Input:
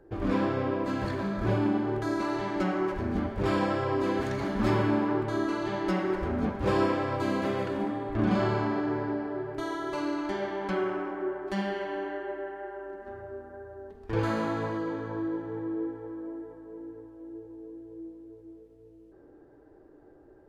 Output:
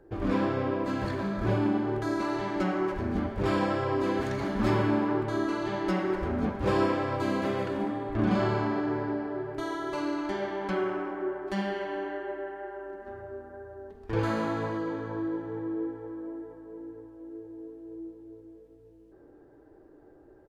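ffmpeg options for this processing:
-filter_complex "[0:a]asplit=2[s0][s1];[s1]afade=t=in:st=16.93:d=0.01,afade=t=out:st=17.58:d=0.01,aecho=0:1:370|740|1110|1480|1850|2220|2590|2960|3330:0.375837|0.244294|0.158791|0.103214|0.0670893|0.0436081|0.0283452|0.0184244|0.0119759[s2];[s0][s2]amix=inputs=2:normalize=0"

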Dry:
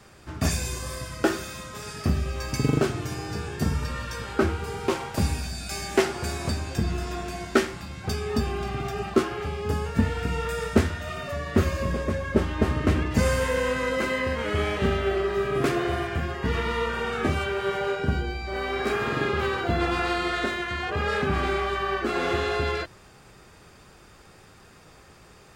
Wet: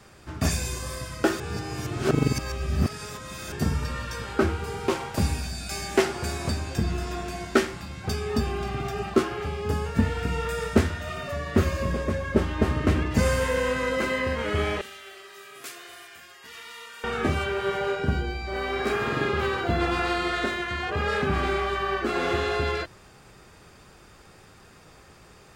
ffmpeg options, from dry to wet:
-filter_complex "[0:a]asettb=1/sr,asplit=3[s0][s1][s2];[s0]atrim=end=14.814[s3];[s1]atrim=start=14.81:end=17.04,asetpts=PTS-STARTPTS,afade=t=in:d=0.004:c=qsin,afade=t=out:st=2.226:d=0.004:c=qsin,aderivative[s4];[s2]atrim=start=17.036[s5];[s3][s4]acrossfade=d=0.004:c1=hsin:c2=qsin[s6];[s6][s5]acrossfade=d=0.004:c1=qsin:c2=hsin,asplit=3[s7][s8][s9];[s7]atrim=end=1.402[s10];[s8]atrim=start=1.398:end=3.522,asetpts=PTS-STARTPTS,areverse[s11];[s9]atrim=start=3.518[s12];[s10][s11]acrossfade=d=0.004:c1=hsin:c2=hsin[s13];[s13][s12]acrossfade=d=0.004:c1=hsin:c2=hsin"

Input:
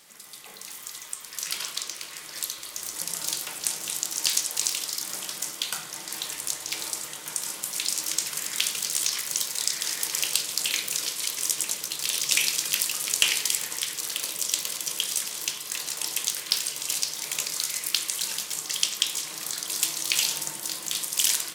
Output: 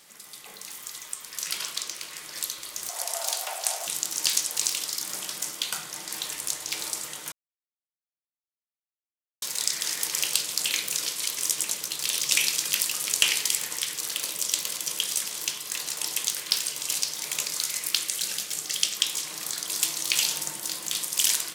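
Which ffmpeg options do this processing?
-filter_complex "[0:a]asettb=1/sr,asplit=3[s0][s1][s2];[s0]atrim=end=2.894[s3];[s1]atrim=start=2.89:end=3.87,asetpts=PTS-STARTPTS,afade=t=in:d=0.004:c=qsin,afade=t=out:st=0.976:d=0.004:c=qsin,highpass=f=690:t=q:w=8.1[s4];[s2]atrim=start=3.866[s5];[s3][s4]acrossfade=d=0.004:c1=hsin:c2=qsin[s6];[s6][s5]acrossfade=d=0.004:c1=qsin:c2=hsin,asettb=1/sr,asplit=3[s7][s8][s9];[s7]atrim=end=18.044[s10];[s8]atrim=start=18.04:end=18.96,asetpts=PTS-STARTPTS,afade=t=in:d=0.004:c=qsin,afade=t=out:st=0.916:d=0.004:c=qsin,equalizer=f=990:t=o:w=0.3:g=-10[s11];[s9]atrim=start=18.956[s12];[s10][s11]acrossfade=d=0.004:c1=hsin:c2=qsin[s13];[s13][s12]acrossfade=d=0.004:c1=qsin:c2=hsin,asplit=3[s14][s15][s16];[s14]atrim=end=7.32,asetpts=PTS-STARTPTS,afade=t=out:st=7.316:d=0.004:c=hsin[s17];[s15]atrim=start=7.32:end=9.42,asetpts=PTS-STARTPTS,volume=0[s18];[s16]atrim=start=9.42,asetpts=PTS-STARTPTS,afade=t=in:d=0.004:c=hsin[s19];[s17][s18][s19]concat=n=3:v=0:a=1"

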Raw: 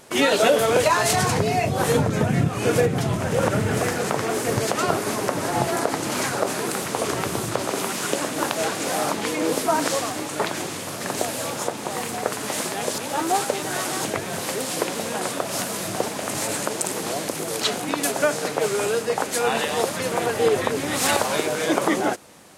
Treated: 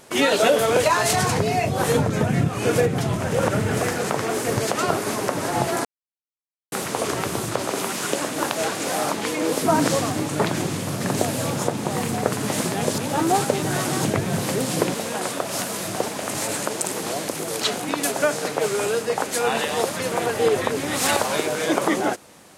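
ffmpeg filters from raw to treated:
-filter_complex "[0:a]asettb=1/sr,asplit=3[s0][s1][s2];[s0]atrim=end=9.624[s3];[s1]atrim=start=9.62:end=14.94,asetpts=PTS-STARTPTS,afade=t=in:d=0.004:c=qsin,afade=t=out:st=5.316:d=0.004:c=qsin,equalizer=f=130:t=o:w=2.3:g=12.5[s4];[s2]atrim=start=14.936[s5];[s3][s4]acrossfade=d=0.004:c1=hsin:c2=qsin[s6];[s6][s5]acrossfade=d=0.004:c1=qsin:c2=hsin,asplit=3[s7][s8][s9];[s7]atrim=end=5.85,asetpts=PTS-STARTPTS,afade=t=out:st=5.846:d=0.004:c=hsin[s10];[s8]atrim=start=5.85:end=6.72,asetpts=PTS-STARTPTS,volume=0[s11];[s9]atrim=start=6.72,asetpts=PTS-STARTPTS,afade=t=in:d=0.004:c=hsin[s12];[s10][s11][s12]concat=n=3:v=0:a=1"

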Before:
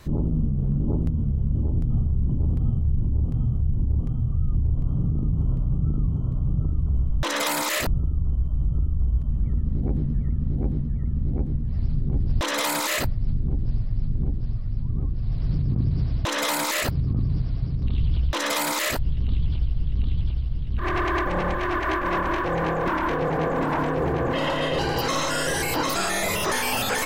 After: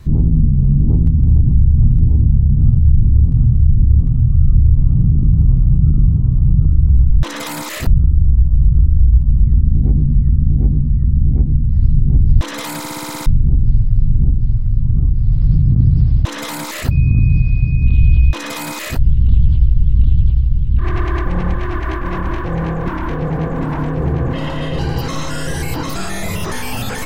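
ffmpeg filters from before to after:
-filter_complex "[0:a]asettb=1/sr,asplit=3[s0][s1][s2];[s0]atrim=end=16.914[s3];[s1]atrim=start=16.91:end=18.95,asetpts=PTS-STARTPTS,afade=t=in:d=0.004:c=qsin,afade=t=out:st=2.036:d=0.004:c=qsin,aeval=exprs='val(0)+0.0224*sin(2*PI*2500*n/s)':c=same[s4];[s2]atrim=start=18.946[s5];[s3][s4]acrossfade=d=0.004:c1=hsin:c2=qsin[s6];[s6][s5]acrossfade=d=0.004:c1=qsin:c2=hsin,asplit=11[s7][s8][s9][s10][s11][s12][s13][s14][s15][s16][s17];[s7]atrim=end=1.202[s18];[s8]atrim=start=1.198:end=2.612,asetpts=PTS-STARTPTS,areverse[s19];[s9]atrim=start=2.608:end=12.842[s20];[s10]atrim=start=12.778:end=12.842[s21];[s11]atrim=start=12.778:end=12.842[s22];[s12]atrim=start=12.778:end=12.842[s23];[s13]atrim=start=12.778:end=12.842[s24];[s14]atrim=start=12.778:end=12.842[s25];[s15]atrim=start=12.778:end=12.842[s26];[s16]atrim=start=12.778:end=12.842[s27];[s17]atrim=start=13.258[s28];[s18][s19]acrossfade=d=0.004:c1=hsin:c2=hsin[s29];[s29][s20]acrossfade=d=0.004:c1=hsin:c2=hsin[s30];[s30][s21]acrossfade=d=0.004:c1=hsin:c2=hsin[s31];[s31][s22]acrossfade=d=0.004:c1=hsin:c2=hsin[s32];[s32][s23]acrossfade=d=0.004:c1=hsin:c2=hsin[s33];[s33][s24]acrossfade=d=0.004:c1=hsin:c2=hsin[s34];[s34][s25]acrossfade=d=0.004:c1=hsin:c2=hsin[s35];[s35][s26]acrossfade=d=0.004:c1=hsin:c2=hsin[s36];[s36][s27]acrossfade=d=0.004:c1=hsin:c2=hsin[s37];[s37][s28]acrossfade=d=0.004:c1=hsin:c2=hsin,bass=f=250:g=14,treble=f=4000:g=0,bandreject=f=580:w=19,volume=0.841"

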